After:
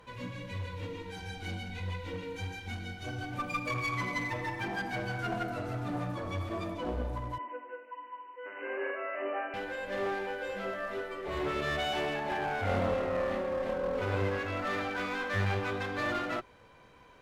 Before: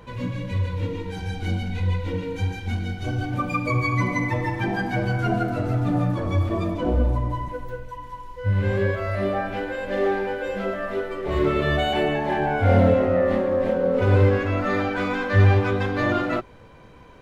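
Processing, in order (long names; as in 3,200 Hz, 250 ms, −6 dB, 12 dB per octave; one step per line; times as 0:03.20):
low-shelf EQ 470 Hz −9.5 dB
asymmetric clip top −27.5 dBFS
0:07.38–0:09.54: linear-phase brick-wall band-pass 240–3,000 Hz
level −5 dB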